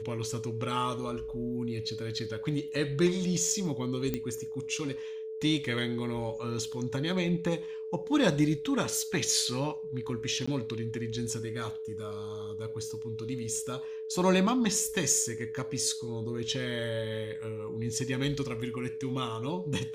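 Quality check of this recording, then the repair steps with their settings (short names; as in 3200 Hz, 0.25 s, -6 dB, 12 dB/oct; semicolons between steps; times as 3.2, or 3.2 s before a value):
tone 440 Hz -36 dBFS
4.14 pop -17 dBFS
10.46–10.47 gap 15 ms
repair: de-click; notch 440 Hz, Q 30; interpolate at 10.46, 15 ms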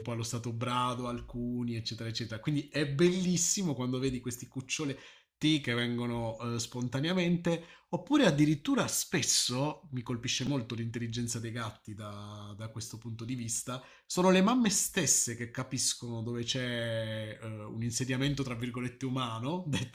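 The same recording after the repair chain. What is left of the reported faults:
none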